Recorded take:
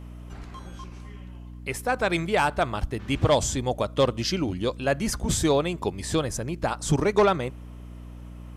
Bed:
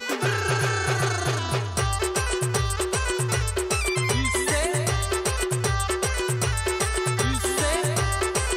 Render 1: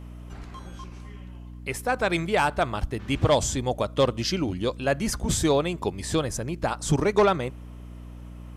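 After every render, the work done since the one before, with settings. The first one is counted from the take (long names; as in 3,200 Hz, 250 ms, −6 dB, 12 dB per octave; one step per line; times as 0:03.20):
no processing that can be heard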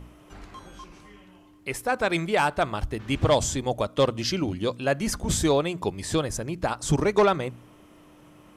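hum removal 60 Hz, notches 4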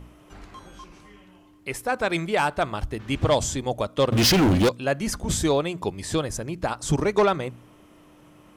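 0:04.12–0:04.69: leveller curve on the samples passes 5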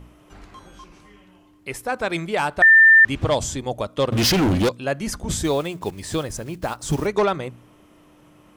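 0:02.62–0:03.05: beep over 1,790 Hz −7.5 dBFS
0:05.44–0:07.07: one scale factor per block 5 bits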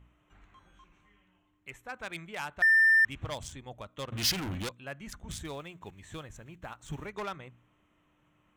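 adaptive Wiener filter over 9 samples
guitar amp tone stack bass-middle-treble 5-5-5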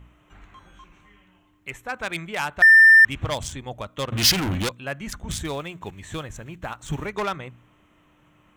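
level +10.5 dB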